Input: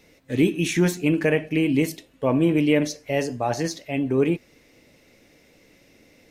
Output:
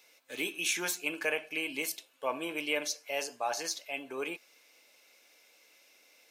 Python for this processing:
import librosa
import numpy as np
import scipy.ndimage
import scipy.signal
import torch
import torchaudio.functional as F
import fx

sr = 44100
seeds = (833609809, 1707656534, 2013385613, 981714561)

y = scipy.signal.sosfilt(scipy.signal.butter(2, 900.0, 'highpass', fs=sr, output='sos'), x)
y = fx.high_shelf(y, sr, hz=9100.0, db=5.5)
y = fx.notch(y, sr, hz=1900.0, q=5.8)
y = F.gain(torch.from_numpy(y), -2.5).numpy()